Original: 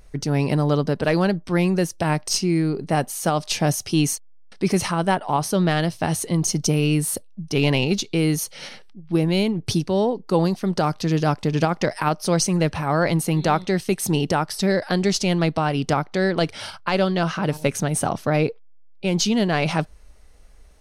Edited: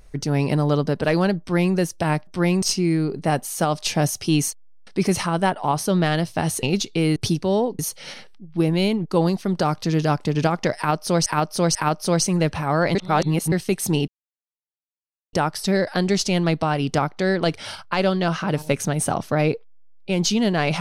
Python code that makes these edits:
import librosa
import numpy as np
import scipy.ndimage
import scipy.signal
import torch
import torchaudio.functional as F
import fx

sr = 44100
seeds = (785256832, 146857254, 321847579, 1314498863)

y = fx.edit(x, sr, fx.duplicate(start_s=1.4, length_s=0.35, to_s=2.27),
    fx.cut(start_s=6.28, length_s=1.53),
    fx.move(start_s=9.61, length_s=0.63, to_s=8.34),
    fx.repeat(start_s=11.95, length_s=0.49, count=3),
    fx.reverse_span(start_s=13.15, length_s=0.57),
    fx.insert_silence(at_s=14.28, length_s=1.25), tone=tone)